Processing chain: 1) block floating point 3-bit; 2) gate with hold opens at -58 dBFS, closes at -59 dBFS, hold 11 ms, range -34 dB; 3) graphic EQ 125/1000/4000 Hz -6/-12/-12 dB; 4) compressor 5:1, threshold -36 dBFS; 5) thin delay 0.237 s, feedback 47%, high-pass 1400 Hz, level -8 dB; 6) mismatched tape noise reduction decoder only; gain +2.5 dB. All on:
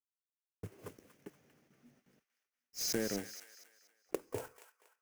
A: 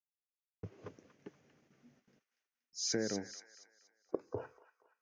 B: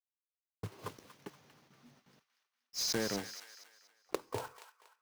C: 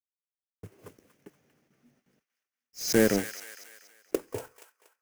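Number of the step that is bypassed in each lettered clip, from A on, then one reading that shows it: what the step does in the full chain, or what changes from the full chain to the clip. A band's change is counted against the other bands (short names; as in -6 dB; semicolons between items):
1, distortion -9 dB; 3, momentary loudness spread change -2 LU; 4, mean gain reduction 6.0 dB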